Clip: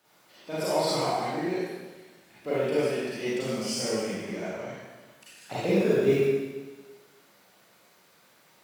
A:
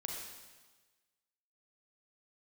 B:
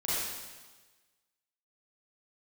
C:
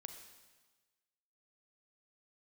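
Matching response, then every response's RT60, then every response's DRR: B; 1.3 s, 1.3 s, 1.3 s; -0.5 dB, -10.0 dB, 5.5 dB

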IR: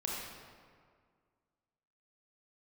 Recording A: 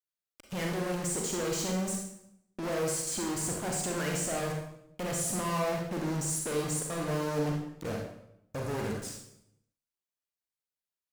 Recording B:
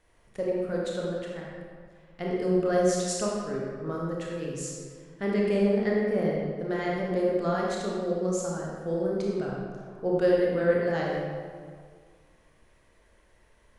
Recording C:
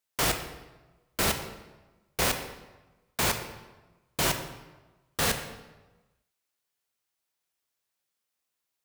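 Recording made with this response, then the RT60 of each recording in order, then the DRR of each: B; 0.75 s, 1.9 s, 1.2 s; 0.0 dB, -4.0 dB, 6.5 dB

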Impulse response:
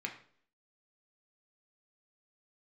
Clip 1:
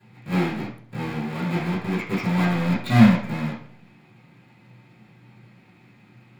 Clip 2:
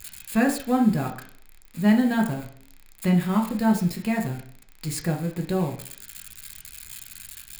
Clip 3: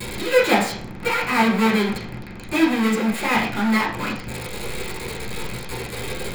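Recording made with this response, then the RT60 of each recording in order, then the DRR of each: 2; 0.55 s, 0.55 s, 0.55 s; -12.5 dB, 1.0 dB, -8.0 dB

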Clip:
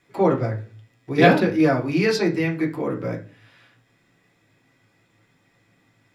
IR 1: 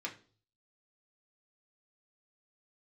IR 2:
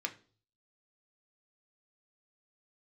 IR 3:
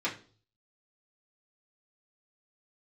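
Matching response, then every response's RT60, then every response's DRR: 1; 0.40 s, 0.40 s, 0.40 s; -1.5 dB, 3.5 dB, -7.0 dB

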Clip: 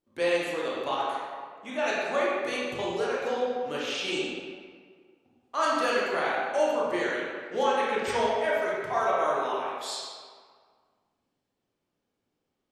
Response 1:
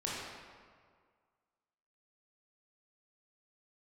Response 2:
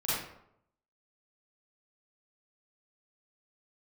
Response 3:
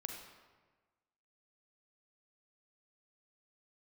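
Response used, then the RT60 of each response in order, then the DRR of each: 1; 1.9 s, 0.75 s, 1.4 s; -7.0 dB, -11.0 dB, 2.5 dB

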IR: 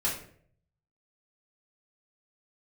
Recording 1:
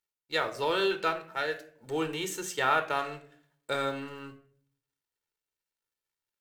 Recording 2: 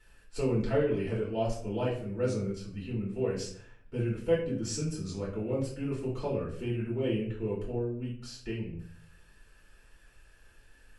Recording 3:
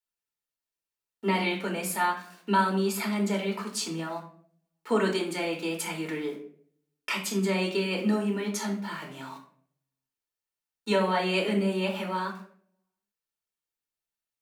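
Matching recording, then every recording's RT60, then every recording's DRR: 2; 0.60 s, 0.55 s, 0.55 s; 7.0 dB, -7.0 dB, -0.5 dB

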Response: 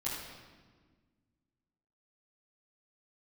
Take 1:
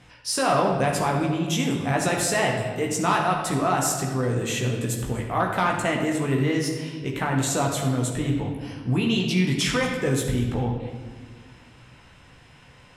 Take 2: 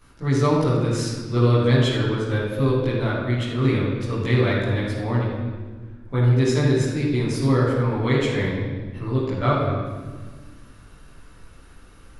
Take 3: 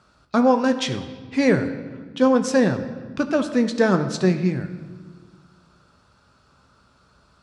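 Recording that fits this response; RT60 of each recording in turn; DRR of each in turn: 2; 1.5 s, 1.5 s, 1.6 s; -1.0 dB, -10.0 dB, 7.5 dB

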